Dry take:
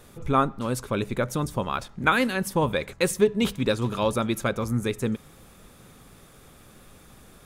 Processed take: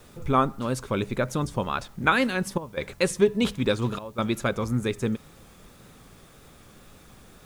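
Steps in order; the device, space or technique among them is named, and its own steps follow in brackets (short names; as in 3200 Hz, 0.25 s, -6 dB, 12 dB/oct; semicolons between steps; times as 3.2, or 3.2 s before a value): worn cassette (LPF 8900 Hz 12 dB/oct; wow and flutter; level dips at 2.58/3.99, 0.19 s -15 dB; white noise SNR 35 dB)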